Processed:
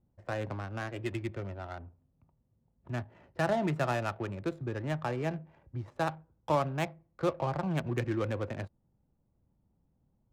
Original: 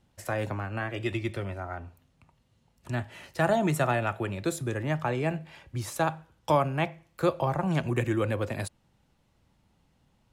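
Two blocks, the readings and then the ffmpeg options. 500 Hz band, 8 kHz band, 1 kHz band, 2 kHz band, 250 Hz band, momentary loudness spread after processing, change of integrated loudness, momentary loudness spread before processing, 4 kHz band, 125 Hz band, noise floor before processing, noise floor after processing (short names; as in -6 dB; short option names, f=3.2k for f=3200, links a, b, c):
-4.5 dB, -11.0 dB, -5.0 dB, -5.5 dB, -4.5 dB, 12 LU, -4.5 dB, 11 LU, -5.0 dB, -4.5 dB, -69 dBFS, -74 dBFS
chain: -af "adynamicsmooth=sensitivity=5:basefreq=650,volume=-4.5dB"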